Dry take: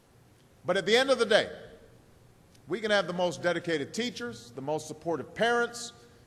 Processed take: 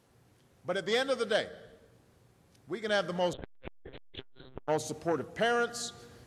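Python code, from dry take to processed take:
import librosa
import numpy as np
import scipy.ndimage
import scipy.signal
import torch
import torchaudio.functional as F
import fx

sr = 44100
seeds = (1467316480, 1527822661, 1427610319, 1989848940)

y = scipy.signal.sosfilt(scipy.signal.butter(2, 42.0, 'highpass', fs=sr, output='sos'), x)
y = fx.lpc_monotone(y, sr, seeds[0], pitch_hz=130.0, order=10, at=(3.33, 4.67))
y = fx.rider(y, sr, range_db=4, speed_s=0.5)
y = fx.transformer_sat(y, sr, knee_hz=1100.0)
y = y * 10.0 ** (-1.0 / 20.0)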